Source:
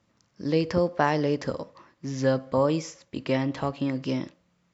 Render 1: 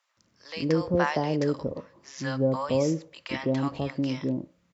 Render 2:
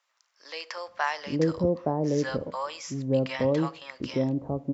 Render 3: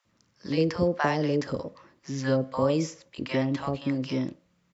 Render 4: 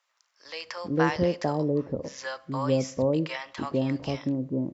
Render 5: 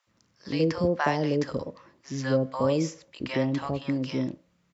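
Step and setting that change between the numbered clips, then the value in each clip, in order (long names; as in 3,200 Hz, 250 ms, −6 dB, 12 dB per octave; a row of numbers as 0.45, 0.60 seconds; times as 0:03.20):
multiband delay without the direct sound, delay time: 170, 870, 50, 450, 70 milliseconds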